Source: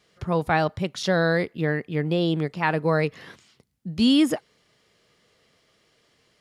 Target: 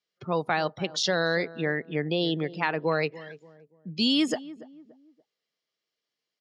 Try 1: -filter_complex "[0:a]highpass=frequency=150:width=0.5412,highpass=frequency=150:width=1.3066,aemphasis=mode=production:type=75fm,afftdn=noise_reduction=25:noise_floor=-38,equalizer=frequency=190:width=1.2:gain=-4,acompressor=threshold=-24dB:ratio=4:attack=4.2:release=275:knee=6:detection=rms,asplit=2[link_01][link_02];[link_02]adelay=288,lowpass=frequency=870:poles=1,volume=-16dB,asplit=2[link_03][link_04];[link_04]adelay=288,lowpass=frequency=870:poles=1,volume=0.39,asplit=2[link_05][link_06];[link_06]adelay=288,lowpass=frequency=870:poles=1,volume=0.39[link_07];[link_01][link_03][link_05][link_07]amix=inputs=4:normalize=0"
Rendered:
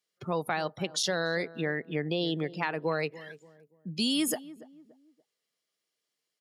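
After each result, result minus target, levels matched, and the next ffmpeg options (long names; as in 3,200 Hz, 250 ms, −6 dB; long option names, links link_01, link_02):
8,000 Hz band +7.0 dB; downward compressor: peak gain reduction +5 dB
-filter_complex "[0:a]highpass=frequency=150:width=0.5412,highpass=frequency=150:width=1.3066,aemphasis=mode=production:type=75fm,afftdn=noise_reduction=25:noise_floor=-38,lowpass=frequency=5900:width=0.5412,lowpass=frequency=5900:width=1.3066,equalizer=frequency=190:width=1.2:gain=-4,acompressor=threshold=-24dB:ratio=4:attack=4.2:release=275:knee=6:detection=rms,asplit=2[link_01][link_02];[link_02]adelay=288,lowpass=frequency=870:poles=1,volume=-16dB,asplit=2[link_03][link_04];[link_04]adelay=288,lowpass=frequency=870:poles=1,volume=0.39,asplit=2[link_05][link_06];[link_06]adelay=288,lowpass=frequency=870:poles=1,volume=0.39[link_07];[link_01][link_03][link_05][link_07]amix=inputs=4:normalize=0"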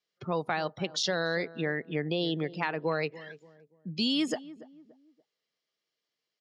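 downward compressor: peak gain reduction +5 dB
-filter_complex "[0:a]highpass=frequency=150:width=0.5412,highpass=frequency=150:width=1.3066,aemphasis=mode=production:type=75fm,afftdn=noise_reduction=25:noise_floor=-38,lowpass=frequency=5900:width=0.5412,lowpass=frequency=5900:width=1.3066,equalizer=frequency=190:width=1.2:gain=-4,acompressor=threshold=-17.5dB:ratio=4:attack=4.2:release=275:knee=6:detection=rms,asplit=2[link_01][link_02];[link_02]adelay=288,lowpass=frequency=870:poles=1,volume=-16dB,asplit=2[link_03][link_04];[link_04]adelay=288,lowpass=frequency=870:poles=1,volume=0.39,asplit=2[link_05][link_06];[link_06]adelay=288,lowpass=frequency=870:poles=1,volume=0.39[link_07];[link_01][link_03][link_05][link_07]amix=inputs=4:normalize=0"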